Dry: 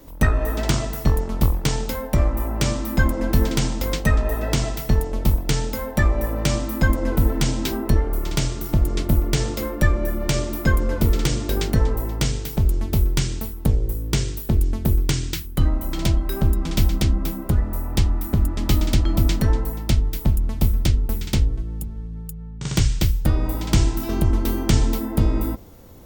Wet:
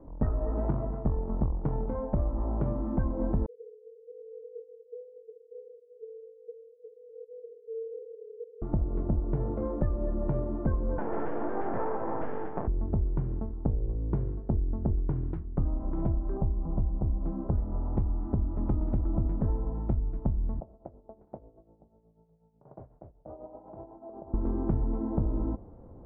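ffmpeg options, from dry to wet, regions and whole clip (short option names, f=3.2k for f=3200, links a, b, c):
-filter_complex "[0:a]asettb=1/sr,asplit=3[a][b][c];[a]atrim=end=3.464[d];[b]atrim=start=3.46:end=8.62,asetpts=PTS-STARTPTS,afade=t=in:d=0.004:c=qsin,afade=t=out:st=5.156:d=0.004:c=qsin,asuperpass=centerf=400:order=20:qfactor=6,afreqshift=59[e];[c]atrim=start=8.616[f];[d][e]acrossfade=d=0.004:c1=hsin:c2=qsin[g];[g][f]acrossfade=d=0.004:c1=qsin:c2=hsin,asettb=1/sr,asplit=3[h][i][j];[h]atrim=end=10.984[k];[i]atrim=start=10.98:end=12.68,asetpts=PTS-STARTPTS,afade=t=in:d=0.004:c=qsin,afade=t=out:st=1.696:d=0.004:c=qsin,asplit=2[l][m];[m]highpass=f=720:p=1,volume=34dB,asoftclip=type=tanh:threshold=-5dB[n];[l][n]amix=inputs=2:normalize=0,lowpass=f=4.8k:p=1,volume=-6dB,highpass=360,equalizer=f=400:t=q:w=4:g=-6,equalizer=f=630:t=q:w=4:g=-3,equalizer=f=1.1k:t=q:w=4:g=-9,equalizer=f=1.7k:t=q:w=4:g=6,equalizer=f=4k:t=q:w=4:g=-7,lowpass=f=7.2k:w=0.5412,lowpass=f=7.2k:w=1.3066,aeval=exprs='max(val(0),0)':c=same[o];[j]atrim=start=12.676[p];[k][o]acrossfade=d=0.004:c1=hsin:c2=qsin[q];[q][p]acrossfade=d=0.004:c1=qsin:c2=hsin,asettb=1/sr,asplit=3[r][s][t];[r]atrim=end=16.374[u];[s]atrim=start=16.37:end=17.26,asetpts=PTS-STARTPTS,afade=t=in:d=0.004:c=qsin,afade=t=out:st=0.886:d=0.004:c=qsin,lowpass=f=1.1k:w=0.5412,lowpass=f=1.1k:w=1.3066,equalizer=f=270:t=o:w=1.3:g=-5.5[v];[t]atrim=start=17.256[w];[u][v]acrossfade=d=0.004:c1=hsin:c2=qsin[x];[x][w]acrossfade=d=0.004:c1=qsin:c2=hsin,asettb=1/sr,asplit=3[y][z][aa];[y]atrim=end=20.604[ab];[z]atrim=start=20.6:end=24.34,asetpts=PTS-STARTPTS,afade=t=in:d=0.004:c=qsin,afade=t=out:st=3.736:d=0.004:c=qsin,tremolo=f=8.1:d=0.65,bandpass=f=650:t=q:w=3.5[ac];[aa]atrim=start=24.336[ad];[ab][ac]acrossfade=d=0.004:c1=hsin:c2=qsin[ae];[ae][ad]acrossfade=d=0.004:c1=qsin:c2=hsin,lowpass=f=1k:w=0.5412,lowpass=f=1k:w=1.3066,acompressor=threshold=-22dB:ratio=3,volume=-3.5dB"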